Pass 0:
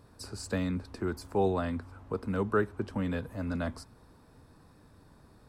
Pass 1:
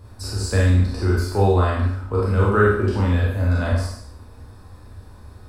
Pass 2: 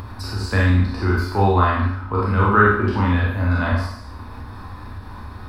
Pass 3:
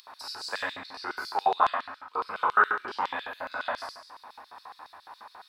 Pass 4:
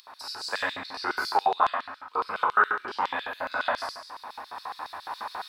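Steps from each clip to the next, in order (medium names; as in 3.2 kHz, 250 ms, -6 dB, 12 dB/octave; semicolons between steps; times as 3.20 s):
spectral sustain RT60 0.71 s; resonant low shelf 120 Hz +7.5 dB, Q 3; Schroeder reverb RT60 0.31 s, combs from 30 ms, DRR -1.5 dB; trim +5 dB
ten-band graphic EQ 250 Hz +5 dB, 500 Hz -5 dB, 1 kHz +9 dB, 2 kHz +5 dB, 4 kHz +4 dB, 8 kHz -11 dB; upward compressor, threshold -24 dBFS; trim -1 dB
LFO high-pass square 7.2 Hz 740–4000 Hz; trim -7.5 dB
recorder AGC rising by 5.1 dB/s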